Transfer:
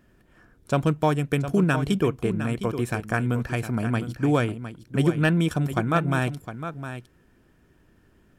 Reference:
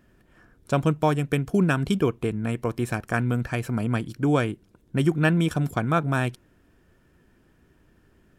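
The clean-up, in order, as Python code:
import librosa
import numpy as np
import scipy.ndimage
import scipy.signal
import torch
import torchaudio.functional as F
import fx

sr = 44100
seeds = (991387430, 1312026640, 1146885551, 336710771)

y = fx.fix_declip(x, sr, threshold_db=-11.0)
y = fx.fix_echo_inverse(y, sr, delay_ms=709, level_db=-10.5)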